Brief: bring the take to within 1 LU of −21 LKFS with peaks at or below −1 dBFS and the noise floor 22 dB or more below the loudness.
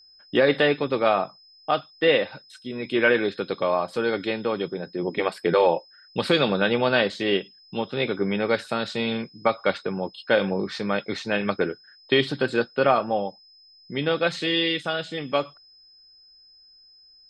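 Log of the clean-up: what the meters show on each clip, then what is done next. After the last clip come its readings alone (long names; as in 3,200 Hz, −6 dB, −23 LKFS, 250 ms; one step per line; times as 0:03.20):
interfering tone 5,100 Hz; level of the tone −51 dBFS; integrated loudness −24.5 LKFS; sample peak −7.5 dBFS; target loudness −21.0 LKFS
→ notch filter 5,100 Hz, Q 30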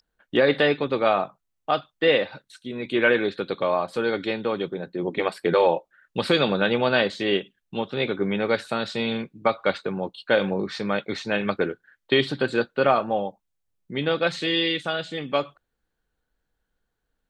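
interfering tone none found; integrated loudness −24.5 LKFS; sample peak −7.5 dBFS; target loudness −21.0 LKFS
→ level +3.5 dB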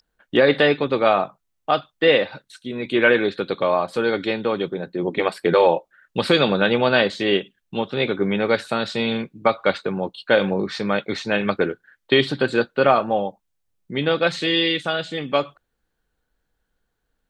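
integrated loudness −21.0 LKFS; sample peak −4.0 dBFS; background noise floor −75 dBFS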